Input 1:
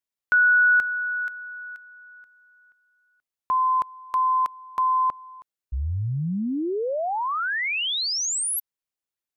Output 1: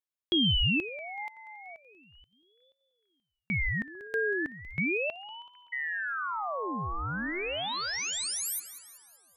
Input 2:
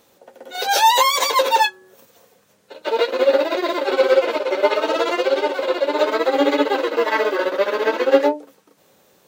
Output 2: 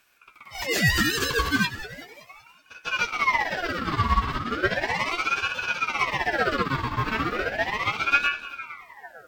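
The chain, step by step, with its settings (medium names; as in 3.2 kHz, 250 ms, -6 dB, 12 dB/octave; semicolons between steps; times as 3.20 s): two-band feedback delay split 550 Hz, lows 451 ms, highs 189 ms, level -14 dB; ring modulator with a swept carrier 1.3 kHz, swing 55%, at 0.36 Hz; trim -4.5 dB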